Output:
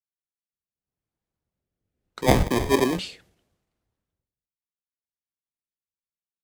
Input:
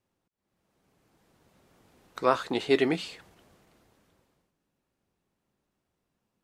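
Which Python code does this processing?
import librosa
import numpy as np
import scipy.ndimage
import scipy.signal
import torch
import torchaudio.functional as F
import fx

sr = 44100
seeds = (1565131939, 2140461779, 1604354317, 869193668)

p1 = fx.over_compress(x, sr, threshold_db=-33.0, ratio=-1.0)
p2 = x + (p1 * librosa.db_to_amplitude(2.0))
p3 = fx.sample_hold(p2, sr, seeds[0], rate_hz=1400.0, jitter_pct=0, at=(2.21, 2.99))
p4 = fx.rotary(p3, sr, hz=0.7)
p5 = fx.band_widen(p4, sr, depth_pct=100)
y = p5 * librosa.db_to_amplitude(-2.5)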